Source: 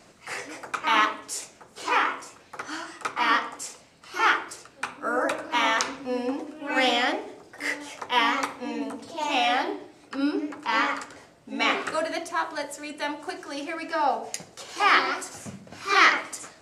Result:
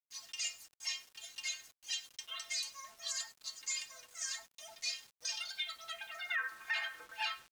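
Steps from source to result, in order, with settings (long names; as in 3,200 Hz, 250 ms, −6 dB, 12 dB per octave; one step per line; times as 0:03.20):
fade-out on the ending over 0.68 s
high-frequency loss of the air 230 metres
stiff-string resonator 72 Hz, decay 0.51 s, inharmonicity 0.008
repeating echo 220 ms, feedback 35%, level −23 dB
band-pass filter sweep 3,100 Hz → 710 Hz, 0:11.30–0:14.33
bit reduction 11 bits
change of speed 2.21×
brickwall limiter −36 dBFS, peak gain reduction 9.5 dB
level +9 dB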